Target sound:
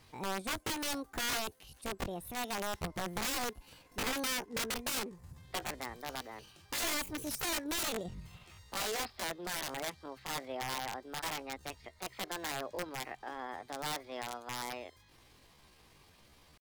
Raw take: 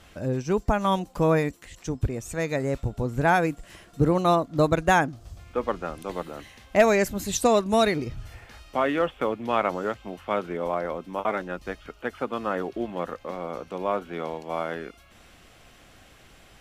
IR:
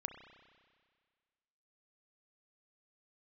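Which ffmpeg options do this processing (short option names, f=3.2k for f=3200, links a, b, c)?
-af "aeval=exprs='(mod(10*val(0)+1,2)-1)/10':c=same,asetrate=66075,aresample=44100,atempo=0.66742,volume=-9dB"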